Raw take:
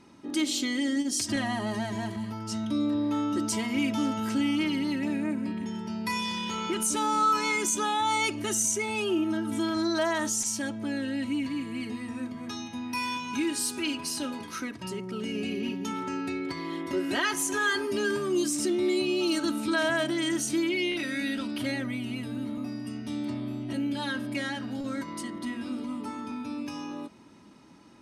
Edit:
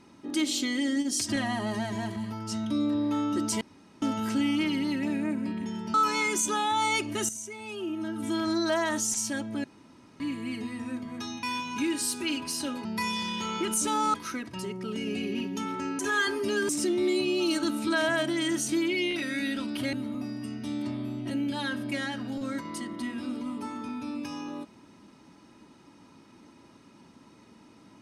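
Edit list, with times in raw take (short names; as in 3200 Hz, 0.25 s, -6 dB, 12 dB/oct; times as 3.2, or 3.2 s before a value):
3.61–4.02 room tone
5.94–7.23 move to 14.42
8.58–9.7 fade in quadratic, from -12 dB
10.93–11.49 room tone
12.72–13 cut
16.27–17.47 cut
18.17–18.5 cut
21.74–22.36 cut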